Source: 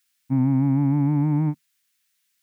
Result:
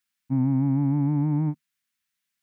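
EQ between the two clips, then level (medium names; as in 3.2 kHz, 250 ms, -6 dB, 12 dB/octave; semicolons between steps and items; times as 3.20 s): treble shelf 2.1 kHz -9.5 dB; -2.5 dB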